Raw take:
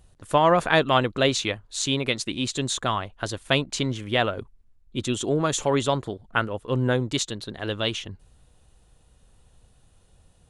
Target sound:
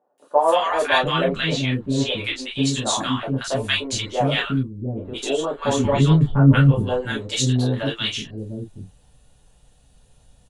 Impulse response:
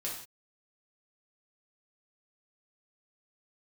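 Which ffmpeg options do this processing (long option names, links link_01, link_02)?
-filter_complex "[0:a]asettb=1/sr,asplit=3[link_01][link_02][link_03];[link_01]atrim=end=0.874[link_04];[link_02]atrim=start=0.87:end=2.45,asetpts=PTS-STARTPTS,afade=type=in:duration=0.004:curve=qsin,afade=type=out:start_time=1.576:duration=0.004:curve=qsin,acrossover=split=3900[link_05][link_06];[link_06]acompressor=threshold=-43dB:ratio=4:attack=1:release=60[link_07];[link_05][link_07]amix=inputs=2:normalize=0[link_08];[link_03]atrim=start=2.446[link_09];[link_04][link_08]acrossfade=duration=0.004:curve1=hsin:curve2=qsin[link_10];[link_10][link_09]acrossfade=duration=0.004:curve1=qsin:curve2=hsin,asettb=1/sr,asplit=3[link_11][link_12][link_13];[link_11]atrim=end=5.144[link_14];[link_12]atrim=start=5.14:end=6.28,asetpts=PTS-STARTPTS,afade=type=in:duration=0.004:curve=qsin,afade=type=out:start_time=1.136:duration=0.004:curve=qsin,bass=frequency=250:gain=14,treble=frequency=4000:gain=-9[link_15];[link_13]atrim=start=6.276[link_16];[link_14][link_15]acrossfade=duration=0.004:curve1=hsin:curve2=qsin[link_17];[link_17][link_16]acrossfade=duration=0.004:curve1=qsin:curve2=hsin,acrossover=split=360|1100[link_18][link_19][link_20];[link_20]adelay=180[link_21];[link_18]adelay=700[link_22];[link_22][link_19][link_21]amix=inputs=3:normalize=0[link_23];[1:a]atrim=start_sample=2205,atrim=end_sample=3528,asetrate=66150,aresample=44100[link_24];[link_23][link_24]afir=irnorm=-1:irlink=0,volume=6.5dB"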